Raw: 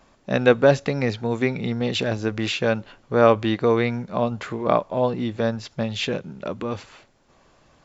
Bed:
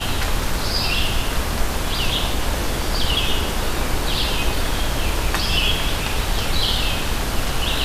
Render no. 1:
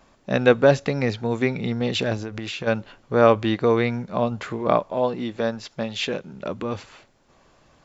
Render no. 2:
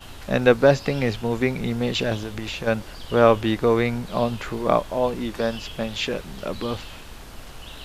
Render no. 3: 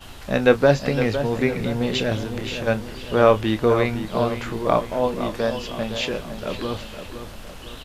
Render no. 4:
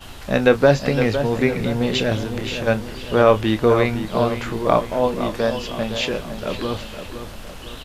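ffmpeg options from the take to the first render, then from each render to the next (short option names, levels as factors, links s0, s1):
-filter_complex "[0:a]asplit=3[s0][s1][s2];[s0]afade=t=out:st=2.22:d=0.02[s3];[s1]acompressor=threshold=0.0447:ratio=6:attack=3.2:release=140:knee=1:detection=peak,afade=t=in:st=2.22:d=0.02,afade=t=out:st=2.66:d=0.02[s4];[s2]afade=t=in:st=2.66:d=0.02[s5];[s3][s4][s5]amix=inputs=3:normalize=0,asettb=1/sr,asplit=3[s6][s7][s8];[s6]atrim=end=4.924[s9];[s7]atrim=start=4.92:end=6.33,asetpts=PTS-STARTPTS,afade=t=in:d=0.004:c=qsin,afade=t=out:st=1.406:d=0.004:c=qsin,equalizer=f=69:w=0.68:g=-12.5[s10];[s8]atrim=start=6.326[s11];[s9][s10]acrossfade=d=0.004:c1=hsin:c2=qsin[s12];[s12][s11]acrossfade=d=0.004:c1=qsin:c2=hsin"
-filter_complex "[1:a]volume=0.119[s0];[0:a][s0]amix=inputs=2:normalize=0"
-filter_complex "[0:a]asplit=2[s0][s1];[s1]adelay=28,volume=0.251[s2];[s0][s2]amix=inputs=2:normalize=0,asplit=2[s3][s4];[s4]adelay=509,lowpass=f=3300:p=1,volume=0.335,asplit=2[s5][s6];[s6]adelay=509,lowpass=f=3300:p=1,volume=0.48,asplit=2[s7][s8];[s8]adelay=509,lowpass=f=3300:p=1,volume=0.48,asplit=2[s9][s10];[s10]adelay=509,lowpass=f=3300:p=1,volume=0.48,asplit=2[s11][s12];[s12]adelay=509,lowpass=f=3300:p=1,volume=0.48[s13];[s3][s5][s7][s9][s11][s13]amix=inputs=6:normalize=0"
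-af "volume=1.33,alimiter=limit=0.794:level=0:latency=1"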